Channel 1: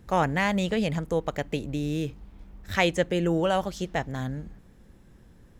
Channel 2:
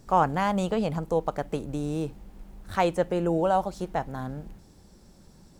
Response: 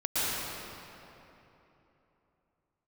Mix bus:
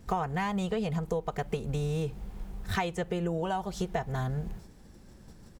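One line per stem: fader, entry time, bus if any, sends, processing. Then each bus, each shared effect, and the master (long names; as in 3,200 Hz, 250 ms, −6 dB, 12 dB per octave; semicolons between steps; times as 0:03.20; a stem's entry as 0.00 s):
−0.5 dB, 0.00 s, no send, no processing
+3.0 dB, 3.7 ms, polarity flipped, no send, noise gate −51 dBFS, range −8 dB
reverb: not used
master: downward compressor 12 to 1, threshold −27 dBFS, peak gain reduction 15 dB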